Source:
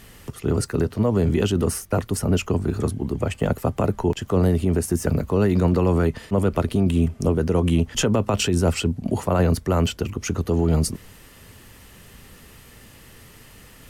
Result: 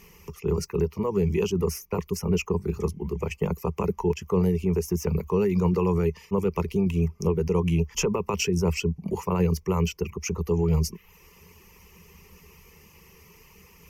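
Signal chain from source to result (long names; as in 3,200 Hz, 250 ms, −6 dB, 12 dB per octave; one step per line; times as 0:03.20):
reverb reduction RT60 0.51 s
EQ curve with evenly spaced ripples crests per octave 0.79, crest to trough 15 dB
level −7 dB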